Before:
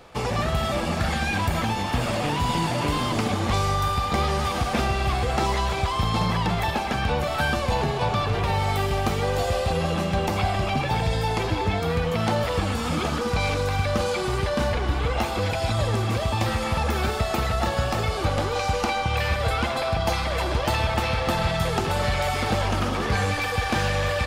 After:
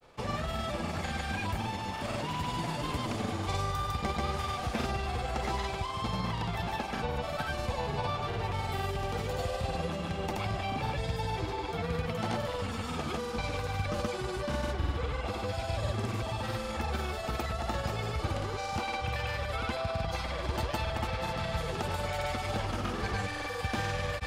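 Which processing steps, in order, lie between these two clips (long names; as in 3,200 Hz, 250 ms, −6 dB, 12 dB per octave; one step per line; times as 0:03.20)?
granular cloud, pitch spread up and down by 0 semitones
level −8 dB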